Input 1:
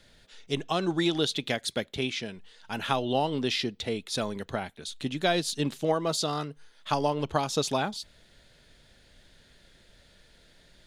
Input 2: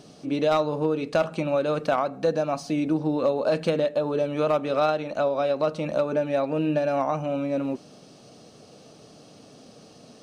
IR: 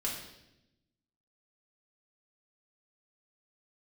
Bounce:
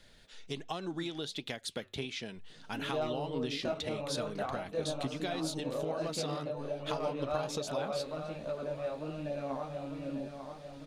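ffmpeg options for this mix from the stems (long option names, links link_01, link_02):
-filter_complex "[0:a]bandreject=frequency=50:width_type=h:width=6,bandreject=frequency=100:width_type=h:width=6,acompressor=threshold=-33dB:ratio=6,volume=2.5dB[link_01];[1:a]lowshelf=frequency=140:gain=7.5,flanger=delay=18.5:depth=3.7:speed=0.34,adelay=2500,volume=-7.5dB,asplit=2[link_02][link_03];[link_03]volume=-7.5dB,aecho=0:1:897|1794|2691|3588|4485|5382:1|0.45|0.202|0.0911|0.041|0.0185[link_04];[link_01][link_02][link_04]amix=inputs=3:normalize=0,flanger=delay=1:depth=7.2:regen=80:speed=1.3:shape=sinusoidal"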